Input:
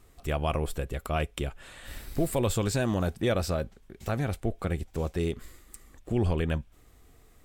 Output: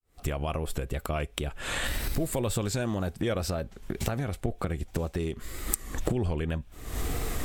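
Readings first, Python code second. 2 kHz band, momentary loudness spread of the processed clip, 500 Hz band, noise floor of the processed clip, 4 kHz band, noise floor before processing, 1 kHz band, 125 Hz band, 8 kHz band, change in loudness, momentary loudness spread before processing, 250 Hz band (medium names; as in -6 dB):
+1.5 dB, 6 LU, -2.0 dB, -52 dBFS, +2.5 dB, -58 dBFS, -1.5 dB, -1.0 dB, +5.0 dB, -1.5 dB, 14 LU, -1.5 dB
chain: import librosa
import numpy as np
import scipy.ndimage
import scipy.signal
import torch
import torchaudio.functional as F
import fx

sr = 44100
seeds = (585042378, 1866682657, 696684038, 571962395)

y = fx.fade_in_head(x, sr, length_s=0.54)
y = fx.recorder_agc(y, sr, target_db=-18.5, rise_db_per_s=68.0, max_gain_db=30)
y = fx.wow_flutter(y, sr, seeds[0], rate_hz=2.1, depth_cents=65.0)
y = F.gain(torch.from_numpy(y), -3.0).numpy()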